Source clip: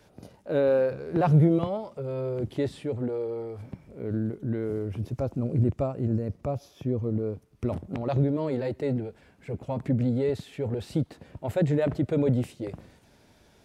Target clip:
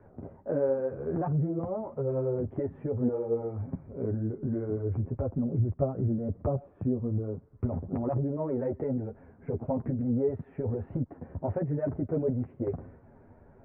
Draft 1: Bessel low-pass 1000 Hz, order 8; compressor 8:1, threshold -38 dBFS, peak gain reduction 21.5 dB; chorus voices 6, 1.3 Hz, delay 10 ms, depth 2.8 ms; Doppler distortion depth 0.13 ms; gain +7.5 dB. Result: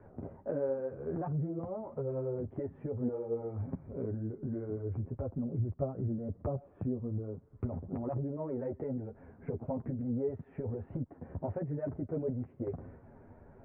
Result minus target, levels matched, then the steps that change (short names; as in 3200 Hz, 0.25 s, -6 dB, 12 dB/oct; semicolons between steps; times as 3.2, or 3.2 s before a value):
compressor: peak gain reduction +6 dB
change: compressor 8:1, threshold -31 dBFS, peak gain reduction 15.5 dB